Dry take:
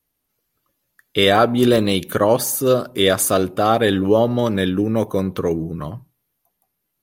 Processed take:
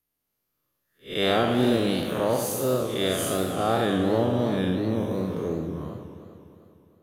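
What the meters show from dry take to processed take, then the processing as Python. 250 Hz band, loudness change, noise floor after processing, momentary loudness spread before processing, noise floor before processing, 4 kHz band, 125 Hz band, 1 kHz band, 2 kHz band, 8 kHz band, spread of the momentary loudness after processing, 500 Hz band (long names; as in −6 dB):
−6.0 dB, −7.5 dB, −80 dBFS, 8 LU, −75 dBFS, −8.0 dB, −5.5 dB, −8.0 dB, −8.0 dB, −10.0 dB, 11 LU, −7.5 dB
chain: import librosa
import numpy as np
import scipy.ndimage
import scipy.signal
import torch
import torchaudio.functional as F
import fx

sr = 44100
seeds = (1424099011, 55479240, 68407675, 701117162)

y = fx.spec_blur(x, sr, span_ms=163.0)
y = fx.hum_notches(y, sr, base_hz=50, count=2)
y = fx.echo_warbled(y, sr, ms=101, feedback_pct=79, rate_hz=2.8, cents=208, wet_db=-9.5)
y = F.gain(torch.from_numpy(y), -5.5).numpy()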